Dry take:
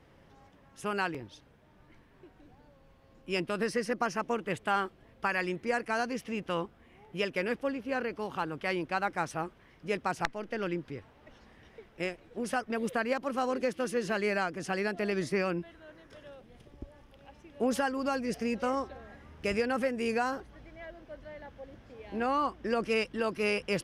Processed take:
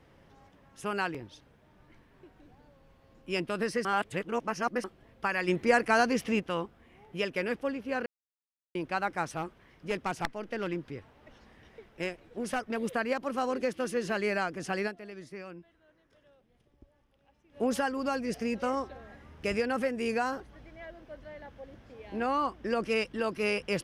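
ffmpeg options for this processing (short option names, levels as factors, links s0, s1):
-filter_complex "[0:a]asplit=3[s0][s1][s2];[s0]afade=t=out:st=5.47:d=0.02[s3];[s1]acontrast=74,afade=t=in:st=5.47:d=0.02,afade=t=out:st=6.39:d=0.02[s4];[s2]afade=t=in:st=6.39:d=0.02[s5];[s3][s4][s5]amix=inputs=3:normalize=0,asettb=1/sr,asplit=3[s6][s7][s8];[s6]atrim=end=9.254[s9];[s7]atrim=start=9.25:end=12.79,asetpts=PTS-STARTPTS,afade=t=in:d=0.004:c=qsin,afade=t=out:st=3.536:d=0.004:c=qsin,aeval=exprs='clip(val(0),-1,0.0398)':c=same[s10];[s8]atrim=start=12.786[s11];[s9][s10]acrossfade=d=0.004:c1=hsin:c2=qsin[s12];[s12][s11]acrossfade=d=0.004:c1=qsin:c2=hsin,asplit=7[s13][s14][s15][s16][s17][s18][s19];[s13]atrim=end=3.852[s20];[s14]atrim=start=3.848:end=4.842,asetpts=PTS-STARTPTS,areverse[s21];[s15]atrim=start=4.838:end=8.06,asetpts=PTS-STARTPTS,afade=t=out:st=3.218:d=0.004:c=hsin[s22];[s16]atrim=start=8.06:end=8.75,asetpts=PTS-STARTPTS,volume=0[s23];[s17]atrim=start=8.75:end=14.98,asetpts=PTS-STARTPTS,afade=t=in:d=0.004:c=hsin,afade=t=out:st=6.11:d=0.12:c=qua:silence=0.211349[s24];[s18]atrim=start=14.98:end=17.46,asetpts=PTS-STARTPTS,volume=0.211[s25];[s19]atrim=start=17.46,asetpts=PTS-STARTPTS,afade=t=in:d=0.12:c=qua:silence=0.211349[s26];[s20][s21]acrossfade=d=0.004:c1=hsin:c2=hsin[s27];[s22][s23][s24][s25][s26]concat=n=5:v=0:a=1[s28];[s27][s28]acrossfade=d=0.004:c1=hsin:c2=hsin"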